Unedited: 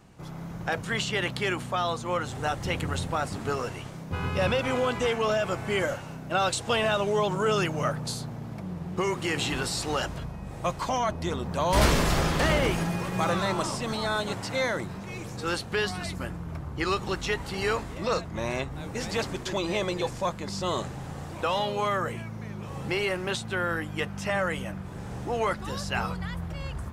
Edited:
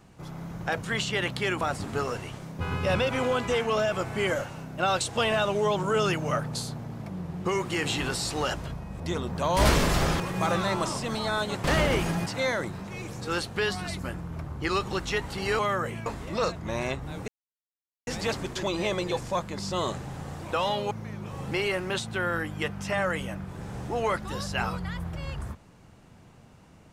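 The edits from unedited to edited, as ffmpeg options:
ffmpeg -i in.wav -filter_complex "[0:a]asplit=10[link_01][link_02][link_03][link_04][link_05][link_06][link_07][link_08][link_09][link_10];[link_01]atrim=end=1.612[link_11];[link_02]atrim=start=3.128:end=10.522[link_12];[link_03]atrim=start=11.158:end=12.362[link_13];[link_04]atrim=start=12.978:end=14.422[link_14];[link_05]atrim=start=12.358:end=12.982[link_15];[link_06]atrim=start=14.418:end=17.752[link_16];[link_07]atrim=start=21.808:end=22.282[link_17];[link_08]atrim=start=17.748:end=18.97,asetpts=PTS-STARTPTS,afade=type=out:start_time=1.218:duration=0.004:curve=hsin,apad=pad_dur=0.79[link_18];[link_09]atrim=start=18.97:end=21.812,asetpts=PTS-STARTPTS,afade=type=in:duration=0.004:curve=hsin[link_19];[link_10]atrim=start=22.278[link_20];[link_11][link_12]acrossfade=duration=0.004:curve1=hsin:curve2=hsin[link_21];[link_21][link_13]acrossfade=duration=0.004:curve1=hsin:curve2=hsin[link_22];[link_22][link_14]acrossfade=duration=0.004:curve1=hsin:curve2=hsin[link_23];[link_23][link_15]acrossfade=duration=0.004:curve1=hsin:curve2=hsin[link_24];[link_24][link_16]acrossfade=duration=0.004:curve1=hsin:curve2=hsin[link_25];[link_25][link_17]acrossfade=duration=0.004:curve1=hsin:curve2=hsin[link_26];[link_18][link_19]concat=n=2:v=0:a=1[link_27];[link_26][link_27]acrossfade=duration=0.004:curve1=hsin:curve2=hsin[link_28];[link_28][link_20]acrossfade=duration=0.004:curve1=hsin:curve2=hsin" out.wav

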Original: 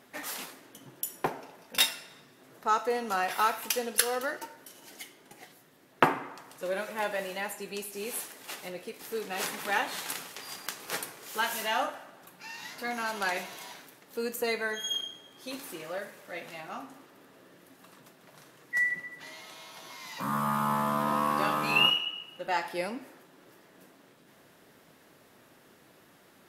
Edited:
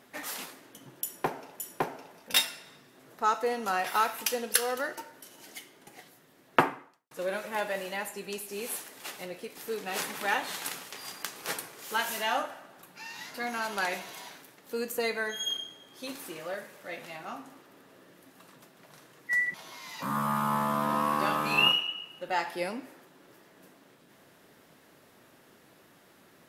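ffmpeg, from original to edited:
ffmpeg -i in.wav -filter_complex "[0:a]asplit=4[link_01][link_02][link_03][link_04];[link_01]atrim=end=1.602[link_05];[link_02]atrim=start=1.038:end=6.55,asetpts=PTS-STARTPTS,afade=type=out:start_time=5.002:duration=0.51:curve=qua[link_06];[link_03]atrim=start=6.55:end=18.982,asetpts=PTS-STARTPTS,afade=type=in:duration=0.004:curve=hsin[link_07];[link_04]atrim=start=19.718[link_08];[link_06][link_07]concat=n=2:v=0:a=1[link_09];[link_05][link_09]acrossfade=duration=0.004:curve1=hsin:curve2=hsin[link_10];[link_10][link_08]acrossfade=duration=0.004:curve1=hsin:curve2=hsin" out.wav

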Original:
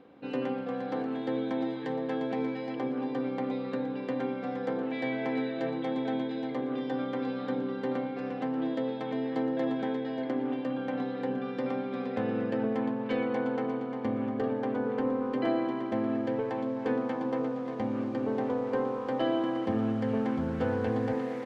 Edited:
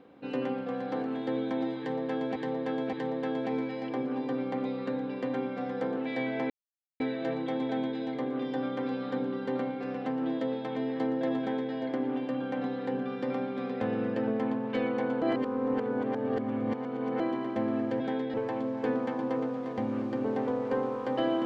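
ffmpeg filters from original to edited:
ffmpeg -i in.wav -filter_complex "[0:a]asplit=8[link_01][link_02][link_03][link_04][link_05][link_06][link_07][link_08];[link_01]atrim=end=2.362[link_09];[link_02]atrim=start=1.788:end=2.362[link_10];[link_03]atrim=start=1.788:end=5.36,asetpts=PTS-STARTPTS,afade=type=out:start_time=3.568:duration=0.004:curve=hsin,apad=pad_dur=0.5[link_11];[link_04]atrim=start=5.36:end=13.582,asetpts=PTS-STARTPTS,afade=type=in:duration=0.004:curve=hsin[link_12];[link_05]atrim=start=13.578:end=15.562,asetpts=PTS-STARTPTS,areverse[link_13];[link_06]atrim=start=15.558:end=16.362[link_14];[link_07]atrim=start=9.748:end=10.092[link_15];[link_08]atrim=start=16.358[link_16];[link_09][link_10]acrossfade=duration=0.004:curve1=hsin:curve2=hsin[link_17];[link_11][link_12]concat=n=2:v=0:a=1[link_18];[link_17][link_18]acrossfade=duration=0.004:curve1=hsin:curve2=hsin[link_19];[link_19][link_13]acrossfade=duration=0.004:curve1=hsin:curve2=hsin[link_20];[link_20][link_14]acrossfade=duration=0.004:curve1=hsin:curve2=hsin[link_21];[link_21][link_15]acrossfade=duration=0.004:curve1=hsin:curve2=hsin[link_22];[link_22][link_16]acrossfade=duration=0.004:curve1=hsin:curve2=hsin" out.wav

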